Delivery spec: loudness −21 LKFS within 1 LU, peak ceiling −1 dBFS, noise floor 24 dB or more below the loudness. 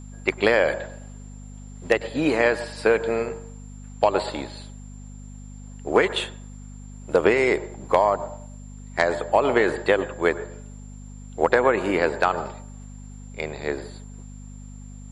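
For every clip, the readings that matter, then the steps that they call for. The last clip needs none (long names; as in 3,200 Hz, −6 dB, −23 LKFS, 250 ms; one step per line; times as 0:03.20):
mains hum 50 Hz; hum harmonics up to 250 Hz; level of the hum −38 dBFS; interfering tone 7,300 Hz; level of the tone −52 dBFS; integrated loudness −23.0 LKFS; sample peak −5.0 dBFS; target loudness −21.0 LKFS
→ hum removal 50 Hz, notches 5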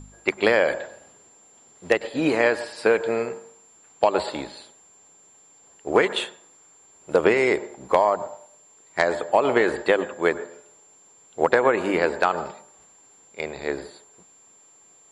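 mains hum none found; interfering tone 7,300 Hz; level of the tone −52 dBFS
→ notch filter 7,300 Hz, Q 30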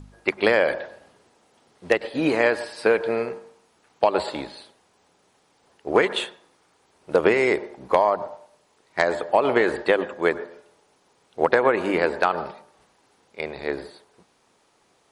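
interfering tone none found; integrated loudness −23.0 LKFS; sample peak −4.5 dBFS; target loudness −21.0 LKFS
→ level +2 dB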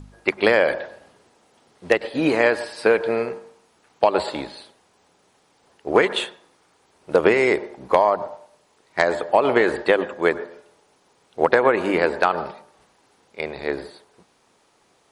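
integrated loudness −21.0 LKFS; sample peak −2.5 dBFS; background noise floor −62 dBFS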